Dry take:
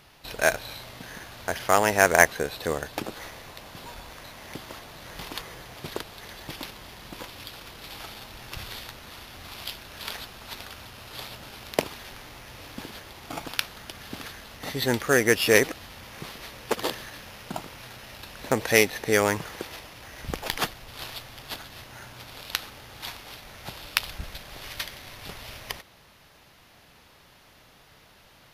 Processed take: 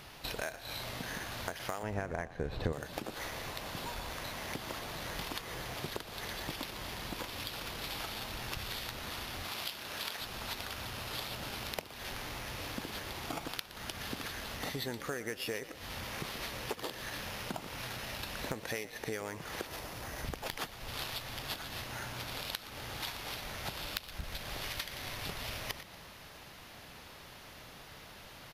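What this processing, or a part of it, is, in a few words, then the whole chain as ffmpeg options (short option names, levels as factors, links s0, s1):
serial compression, leveller first: -filter_complex "[0:a]asettb=1/sr,asplit=3[s0][s1][s2];[s0]atrim=end=9.444[s3];[s1]atrim=start=9.44:end=10.22,asetpts=PTS-STARTPTS,afade=t=in:d=0.004:c=qsin,afade=t=out:st=0.776:d=0.004:c=qsin,highpass=f=210:p=1[s4];[s2]atrim=start=10.216[s5];[s3][s4]acrossfade=d=0.004:c1=hsin:c2=qsin[s6];[s6][s5]acrossfade=d=0.004:c1=qsin:c2=hsin,asettb=1/sr,asplit=3[s7][s8][s9];[s7]atrim=end=19.664[s10];[s8]atrim=start=19.66:end=20.25,asetpts=PTS-STARTPTS,afade=t=in:d=0.004:c=qsin,afade=t=out:st=0.586:d=0.004:c=qsin,equalizer=f=2900:t=o:w=1.7:g=-6[s11];[s9]atrim=start=20.246[s12];[s10][s11]acrossfade=d=0.004:c1=hsin:c2=qsin[s13];[s13][s12]acrossfade=d=0.004:c1=qsin:c2=hsin,acompressor=threshold=0.0316:ratio=2,acompressor=threshold=0.01:ratio=5,asettb=1/sr,asplit=3[s14][s15][s16];[s14]atrim=end=1.834[s17];[s15]atrim=start=1.83:end=2.73,asetpts=PTS-STARTPTS,afade=t=in:d=0.004:c=qsin,afade=t=out:st=0.896:d=0.004:c=qsin,aemphasis=mode=reproduction:type=riaa[s18];[s16]atrim=start=2.726[s19];[s17][s18]acrossfade=d=0.004:c1=hsin:c2=qsin[s20];[s20][s19]acrossfade=d=0.004:c1=qsin:c2=hsin,asplit=6[s21][s22][s23][s24][s25][s26];[s22]adelay=118,afreqshift=39,volume=0.158[s27];[s23]adelay=236,afreqshift=78,volume=0.0822[s28];[s24]adelay=354,afreqshift=117,volume=0.0427[s29];[s25]adelay=472,afreqshift=156,volume=0.0224[s30];[s26]adelay=590,afreqshift=195,volume=0.0116[s31];[s21][s27][s28][s29][s30][s31]amix=inputs=6:normalize=0,volume=1.5"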